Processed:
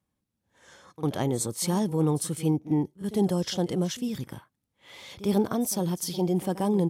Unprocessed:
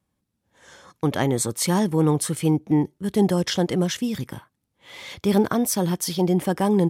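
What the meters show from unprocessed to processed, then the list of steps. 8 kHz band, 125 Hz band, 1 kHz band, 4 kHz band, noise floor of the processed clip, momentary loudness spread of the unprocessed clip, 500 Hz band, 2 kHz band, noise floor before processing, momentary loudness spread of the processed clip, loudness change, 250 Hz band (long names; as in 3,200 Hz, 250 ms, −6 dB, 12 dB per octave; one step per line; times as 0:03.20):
−5.0 dB, −4.5 dB, −6.5 dB, −6.0 dB, −82 dBFS, 7 LU, −5.0 dB, −10.5 dB, −78 dBFS, 8 LU, −5.0 dB, −5.0 dB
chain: dynamic equaliser 1,800 Hz, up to −7 dB, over −44 dBFS, Q 1.3
echo ahead of the sound 52 ms −16 dB
level −5 dB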